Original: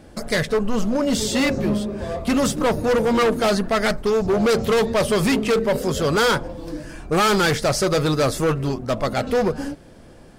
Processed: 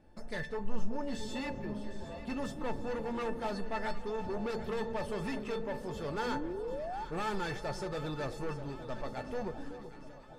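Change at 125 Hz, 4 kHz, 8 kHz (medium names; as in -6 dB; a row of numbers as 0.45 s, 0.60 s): -17.5 dB, -21.0 dB, -25.0 dB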